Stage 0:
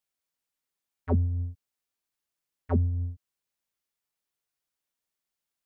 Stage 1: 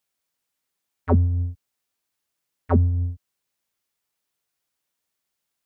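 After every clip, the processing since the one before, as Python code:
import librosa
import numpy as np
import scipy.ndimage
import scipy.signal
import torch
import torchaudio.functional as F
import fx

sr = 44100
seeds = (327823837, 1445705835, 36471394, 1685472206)

y = scipy.signal.sosfilt(scipy.signal.butter(2, 41.0, 'highpass', fs=sr, output='sos'), x)
y = fx.dynamic_eq(y, sr, hz=1300.0, q=1.2, threshold_db=-50.0, ratio=4.0, max_db=6)
y = y * 10.0 ** (6.5 / 20.0)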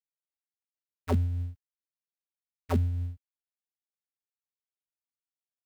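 y = fx.dead_time(x, sr, dead_ms=0.21)
y = y * 10.0 ** (-8.0 / 20.0)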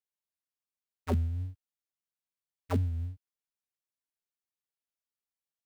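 y = fx.wow_flutter(x, sr, seeds[0], rate_hz=2.1, depth_cents=100.0)
y = y * 10.0 ** (-2.5 / 20.0)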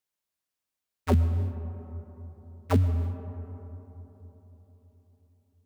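y = fx.rev_freeverb(x, sr, rt60_s=4.1, hf_ratio=0.3, predelay_ms=70, drr_db=11.5)
y = y * 10.0 ** (6.5 / 20.0)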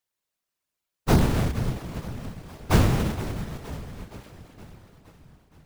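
y = fx.halfwave_hold(x, sr)
y = fx.echo_feedback(y, sr, ms=468, feedback_pct=59, wet_db=-15)
y = fx.whisperise(y, sr, seeds[1])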